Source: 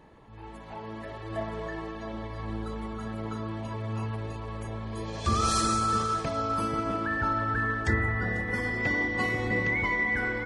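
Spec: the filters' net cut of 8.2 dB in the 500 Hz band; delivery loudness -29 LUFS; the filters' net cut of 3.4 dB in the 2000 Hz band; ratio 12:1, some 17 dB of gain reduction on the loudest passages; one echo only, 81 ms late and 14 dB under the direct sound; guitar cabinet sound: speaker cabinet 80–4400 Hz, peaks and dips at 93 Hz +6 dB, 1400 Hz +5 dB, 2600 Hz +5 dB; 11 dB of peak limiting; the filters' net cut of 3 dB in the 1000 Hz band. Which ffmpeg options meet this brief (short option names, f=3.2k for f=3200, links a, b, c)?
-af "equalizer=f=500:t=o:g=-9,equalizer=f=1k:t=o:g=-6.5,equalizer=f=2k:t=o:g=-3.5,acompressor=threshold=-40dB:ratio=12,alimiter=level_in=18dB:limit=-24dB:level=0:latency=1,volume=-18dB,highpass=80,equalizer=f=93:t=q:w=4:g=6,equalizer=f=1.4k:t=q:w=4:g=5,equalizer=f=2.6k:t=q:w=4:g=5,lowpass=f=4.4k:w=0.5412,lowpass=f=4.4k:w=1.3066,aecho=1:1:81:0.2,volume=19dB"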